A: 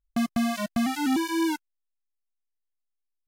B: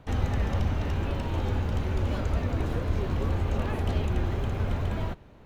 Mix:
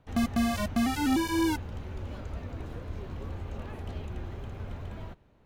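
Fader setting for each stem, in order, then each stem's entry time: -1.5 dB, -10.5 dB; 0.00 s, 0.00 s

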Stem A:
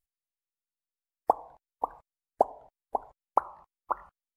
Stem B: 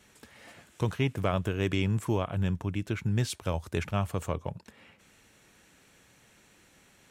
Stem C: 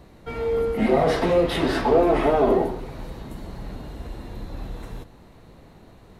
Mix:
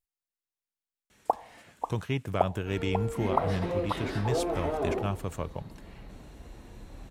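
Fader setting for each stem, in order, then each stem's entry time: -2.5 dB, -2.5 dB, -12.0 dB; 0.00 s, 1.10 s, 2.40 s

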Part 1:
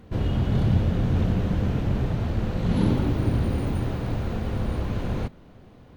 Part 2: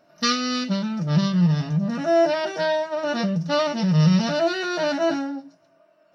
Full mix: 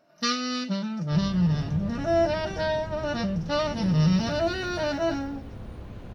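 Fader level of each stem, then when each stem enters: -13.0 dB, -4.5 dB; 1.00 s, 0.00 s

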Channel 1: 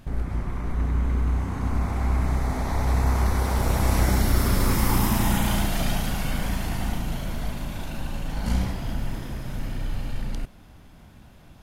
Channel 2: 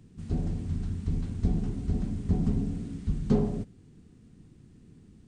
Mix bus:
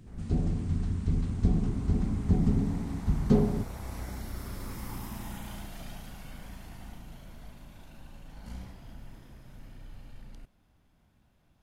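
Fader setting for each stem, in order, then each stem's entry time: -18.0 dB, +1.5 dB; 0.00 s, 0.00 s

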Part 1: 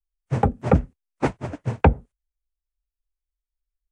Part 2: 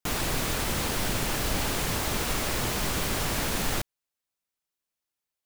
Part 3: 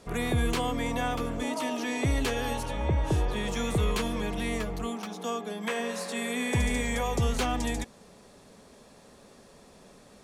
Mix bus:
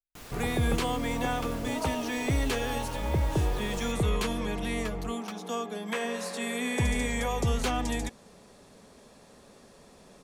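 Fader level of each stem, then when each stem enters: -17.0 dB, -17.5 dB, -0.5 dB; 0.00 s, 0.10 s, 0.25 s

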